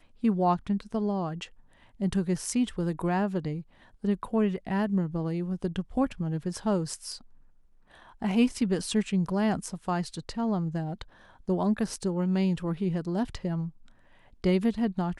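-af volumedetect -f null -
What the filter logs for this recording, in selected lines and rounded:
mean_volume: -29.2 dB
max_volume: -12.2 dB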